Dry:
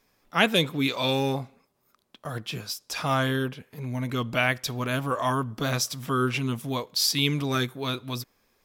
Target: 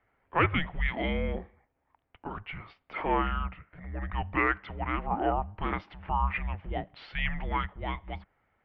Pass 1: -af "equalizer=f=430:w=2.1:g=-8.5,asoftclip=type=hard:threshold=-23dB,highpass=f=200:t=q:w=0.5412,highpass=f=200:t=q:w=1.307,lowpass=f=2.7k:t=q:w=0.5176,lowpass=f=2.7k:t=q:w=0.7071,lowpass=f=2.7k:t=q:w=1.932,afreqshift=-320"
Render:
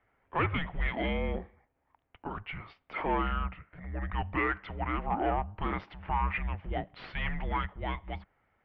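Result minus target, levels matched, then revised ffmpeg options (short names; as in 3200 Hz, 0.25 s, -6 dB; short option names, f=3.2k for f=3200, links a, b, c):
hard clip: distortion +10 dB
-af "equalizer=f=430:w=2.1:g=-8.5,asoftclip=type=hard:threshold=-14.5dB,highpass=f=200:t=q:w=0.5412,highpass=f=200:t=q:w=1.307,lowpass=f=2.7k:t=q:w=0.5176,lowpass=f=2.7k:t=q:w=0.7071,lowpass=f=2.7k:t=q:w=1.932,afreqshift=-320"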